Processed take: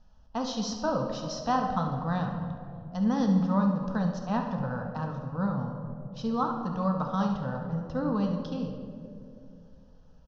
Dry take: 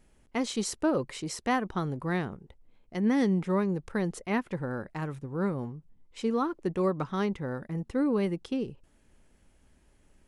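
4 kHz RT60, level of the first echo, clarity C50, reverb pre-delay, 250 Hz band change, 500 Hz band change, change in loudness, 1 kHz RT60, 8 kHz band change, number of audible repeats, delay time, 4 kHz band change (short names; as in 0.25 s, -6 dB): 1.2 s, -10.5 dB, 4.5 dB, 4 ms, +1.0 dB, -2.5 dB, +0.5 dB, 2.1 s, n/a, 1, 70 ms, +0.5 dB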